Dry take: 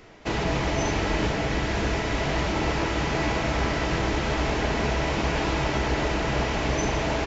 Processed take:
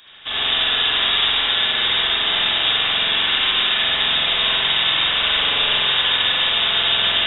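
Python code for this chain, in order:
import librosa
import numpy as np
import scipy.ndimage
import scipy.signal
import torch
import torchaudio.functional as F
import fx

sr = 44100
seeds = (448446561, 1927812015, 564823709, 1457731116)

y = fx.vibrato(x, sr, rate_hz=9.6, depth_cents=13.0)
y = fx.freq_invert(y, sr, carrier_hz=3700)
y = fx.rev_spring(y, sr, rt60_s=1.9, pass_ms=(46,), chirp_ms=35, drr_db=-7.5)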